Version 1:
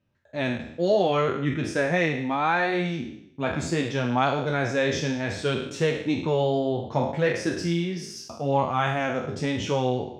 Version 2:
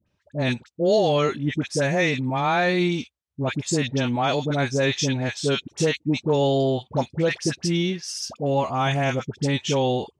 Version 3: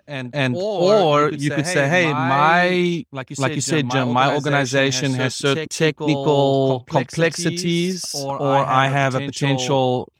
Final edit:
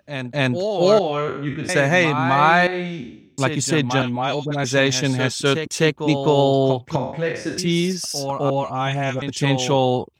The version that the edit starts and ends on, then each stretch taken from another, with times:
3
0.99–1.69 s: from 1
2.67–3.38 s: from 1
4.02–4.64 s: from 2
6.96–7.58 s: from 1
8.50–9.22 s: from 2

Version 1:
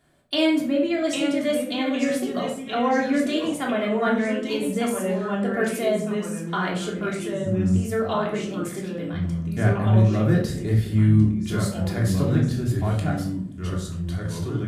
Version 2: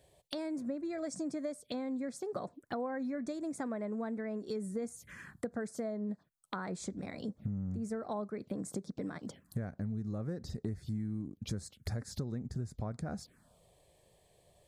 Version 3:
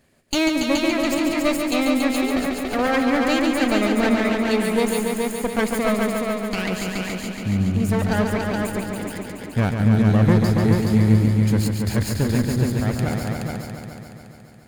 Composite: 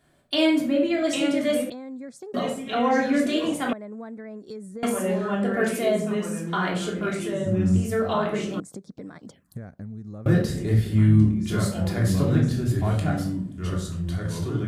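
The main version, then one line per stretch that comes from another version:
1
1.70–2.34 s: from 2
3.73–4.83 s: from 2
8.60–10.26 s: from 2
not used: 3

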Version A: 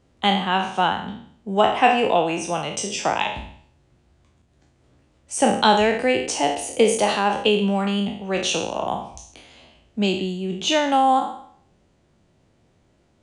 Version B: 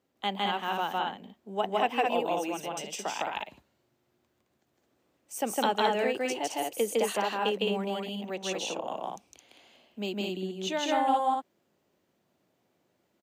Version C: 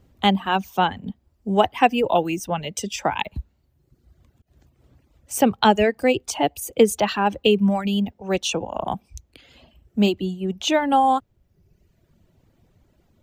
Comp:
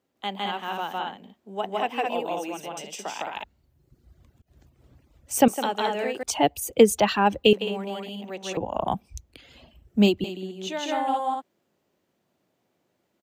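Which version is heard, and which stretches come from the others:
B
3.44–5.48 s: from C
6.23–7.53 s: from C
8.57–10.24 s: from C
not used: A

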